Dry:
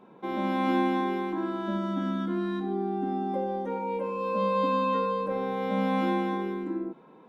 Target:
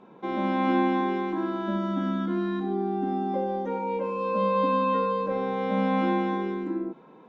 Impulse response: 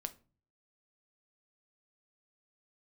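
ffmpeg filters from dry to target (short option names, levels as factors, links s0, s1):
-filter_complex "[0:a]acrossover=split=3500[s0][s1];[s1]acompressor=threshold=0.00126:ratio=4:attack=1:release=60[s2];[s0][s2]amix=inputs=2:normalize=0,volume=1.26" -ar 16000 -c:a libvorbis -b:a 96k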